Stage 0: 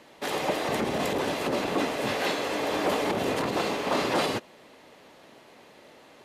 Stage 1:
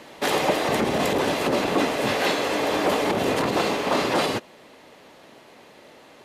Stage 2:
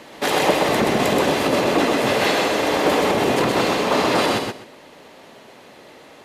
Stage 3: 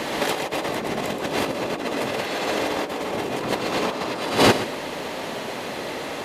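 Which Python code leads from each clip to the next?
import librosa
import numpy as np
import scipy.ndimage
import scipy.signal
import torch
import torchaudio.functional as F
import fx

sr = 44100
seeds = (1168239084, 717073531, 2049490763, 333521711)

y1 = fx.rider(x, sr, range_db=10, speed_s=0.5)
y1 = y1 * 10.0 ** (5.0 / 20.0)
y2 = fx.echo_feedback(y1, sr, ms=127, feedback_pct=19, wet_db=-3.0)
y2 = y2 * 10.0 ** (2.5 / 20.0)
y3 = fx.over_compress(y2, sr, threshold_db=-26.0, ratio=-0.5)
y3 = y3 * 10.0 ** (4.5 / 20.0)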